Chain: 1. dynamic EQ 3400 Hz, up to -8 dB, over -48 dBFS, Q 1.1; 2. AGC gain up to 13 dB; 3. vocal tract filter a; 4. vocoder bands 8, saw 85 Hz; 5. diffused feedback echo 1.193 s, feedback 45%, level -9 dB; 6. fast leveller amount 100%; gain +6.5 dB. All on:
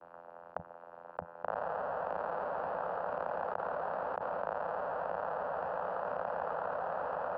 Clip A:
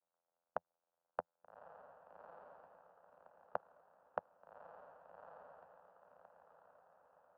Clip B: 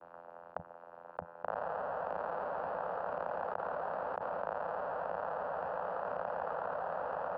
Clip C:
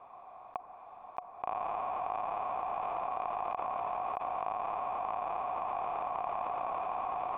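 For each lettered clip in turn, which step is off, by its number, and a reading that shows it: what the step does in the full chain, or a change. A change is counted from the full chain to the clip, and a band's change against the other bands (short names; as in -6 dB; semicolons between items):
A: 6, crest factor change +16.5 dB; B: 2, loudness change -1.0 LU; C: 4, loudness change +1.0 LU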